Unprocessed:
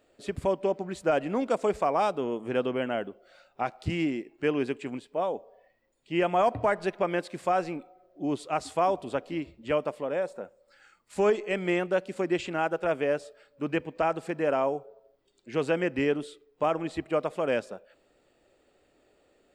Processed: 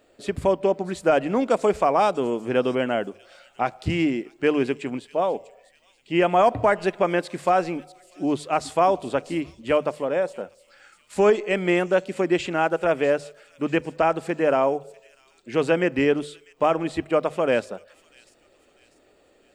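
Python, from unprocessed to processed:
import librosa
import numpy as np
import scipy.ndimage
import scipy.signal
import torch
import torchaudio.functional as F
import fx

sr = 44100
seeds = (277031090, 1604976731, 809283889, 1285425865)

y = fx.hum_notches(x, sr, base_hz=50, count=3)
y = fx.echo_wet_highpass(y, sr, ms=645, feedback_pct=42, hz=4800.0, wet_db=-10.0)
y = y * 10.0 ** (6.0 / 20.0)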